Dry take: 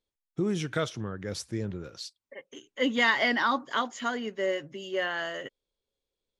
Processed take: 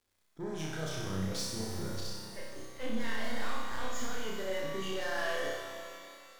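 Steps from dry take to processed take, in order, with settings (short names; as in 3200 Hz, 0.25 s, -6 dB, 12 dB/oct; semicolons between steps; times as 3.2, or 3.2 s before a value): half-wave gain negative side -7 dB; 1.9–4.18 low shelf 120 Hz +11 dB; auto swell 0.112 s; compressor, threshold -36 dBFS, peak gain reduction 16.5 dB; hard clip -39 dBFS, distortion -8 dB; LFO notch square 2.8 Hz 200–2700 Hz; crackle 200/s -67 dBFS; flutter echo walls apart 5.4 m, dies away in 0.9 s; shimmer reverb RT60 2.3 s, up +12 st, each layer -8 dB, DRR 4 dB; gain +3.5 dB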